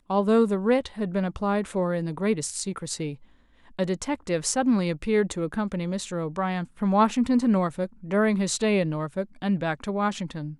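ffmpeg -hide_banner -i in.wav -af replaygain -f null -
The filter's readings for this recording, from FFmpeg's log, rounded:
track_gain = +5.4 dB
track_peak = 0.245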